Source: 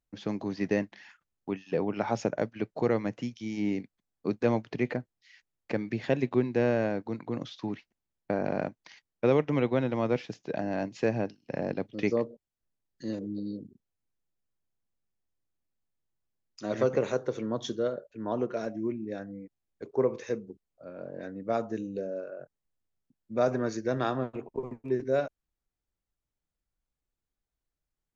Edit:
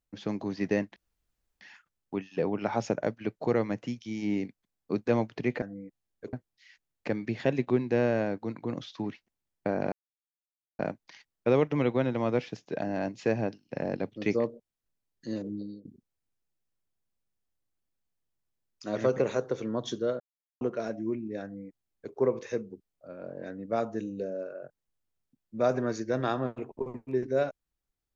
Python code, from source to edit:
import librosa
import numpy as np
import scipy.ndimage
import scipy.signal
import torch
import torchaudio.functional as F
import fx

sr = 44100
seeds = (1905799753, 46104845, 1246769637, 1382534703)

y = fx.edit(x, sr, fx.insert_room_tone(at_s=0.96, length_s=0.65),
    fx.insert_silence(at_s=8.56, length_s=0.87),
    fx.fade_out_to(start_s=13.3, length_s=0.32, floor_db=-19.0),
    fx.silence(start_s=17.97, length_s=0.41),
    fx.duplicate(start_s=19.2, length_s=0.71, to_s=4.97), tone=tone)